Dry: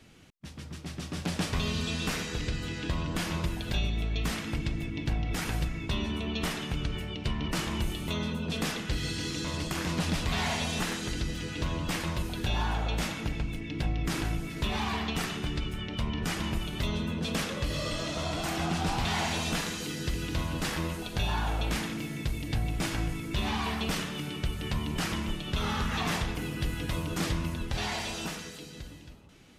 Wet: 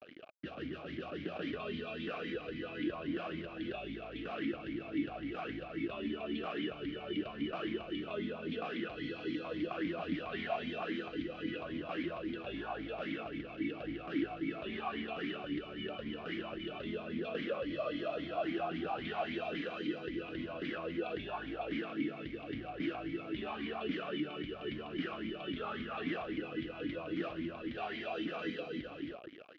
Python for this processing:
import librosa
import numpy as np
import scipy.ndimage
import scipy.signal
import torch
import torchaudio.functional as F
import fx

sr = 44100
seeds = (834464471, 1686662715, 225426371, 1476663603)

p1 = fx.over_compress(x, sr, threshold_db=-42.0, ratio=-1.0)
p2 = x + (p1 * 10.0 ** (2.5 / 20.0))
p3 = fx.quant_dither(p2, sr, seeds[0], bits=6, dither='none')
p4 = fx.air_absorb(p3, sr, metres=300.0)
p5 = fx.vowel_sweep(p4, sr, vowels='a-i', hz=3.7)
y = p5 * 10.0 ** (5.0 / 20.0)